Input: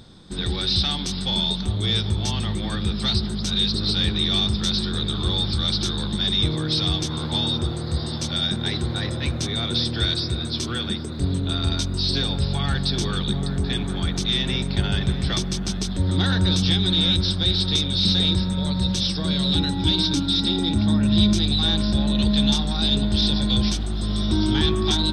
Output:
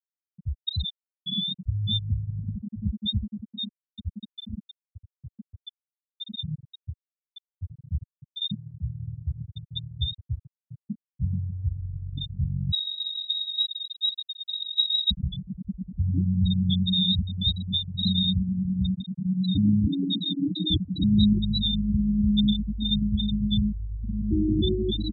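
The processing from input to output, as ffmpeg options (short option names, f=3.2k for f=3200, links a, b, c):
-filter_complex "[0:a]asplit=3[a][b][c];[a]afade=t=out:st=3.44:d=0.02[d];[b]flanger=delay=4.1:depth=7.1:regen=32:speed=1.1:shape=triangular,afade=t=in:st=3.44:d=0.02,afade=t=out:st=7.68:d=0.02[e];[c]afade=t=in:st=7.68:d=0.02[f];[d][e][f]amix=inputs=3:normalize=0,asettb=1/sr,asplit=3[g][h][i];[g]atrim=end=12.724[j];[h]atrim=start=12.72:end=15.11,asetpts=PTS-STARTPTS,afade=t=in:d=0.004:c=qsin,afade=t=out:st=2.386:d=0.004:c=qsin,lowpass=f=3.3k:t=q:w=0.5098,lowpass=f=3.3k:t=q:w=0.6013,lowpass=f=3.3k:t=q:w=0.9,lowpass=f=3.3k:t=q:w=2.563,afreqshift=-3900[k];[i]atrim=start=15.106[l];[j][k]acrossfade=d=0.004:c1=hsin:c2=qsin[m];[m][l]acrossfade=d=0.004:c1=qsin:c2=hsin,asplit=3[n][o][p];[n]atrim=end=19.582[q];[o]atrim=start=19.578:end=21.042,asetpts=PTS-STARTPTS,areverse[r];[p]atrim=start=21.038[s];[q][r]acrossfade=d=0.004:c1=hsin:c2=hsin[t];[t][s]acrossfade=d=0.004:c1=hsin:c2=hsin,highshelf=f=7.5k:g=-3.5,afftfilt=real='re*gte(hypot(re,im),0.447)':imag='im*gte(hypot(re,im),0.447)':win_size=1024:overlap=0.75,highpass=f=75:p=1"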